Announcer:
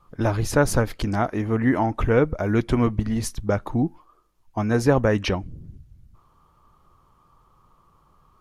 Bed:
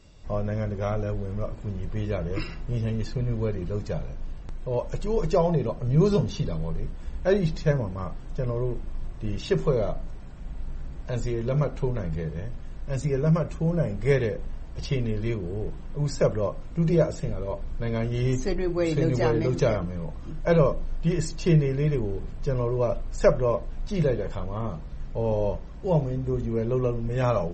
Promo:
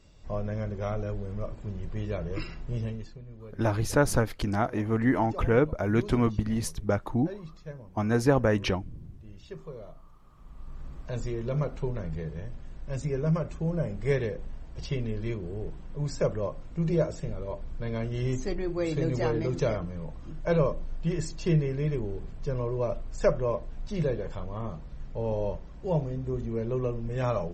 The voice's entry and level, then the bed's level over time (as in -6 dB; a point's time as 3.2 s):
3.40 s, -4.0 dB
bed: 2.83 s -4 dB
3.22 s -18.5 dB
10.16 s -18.5 dB
10.87 s -4.5 dB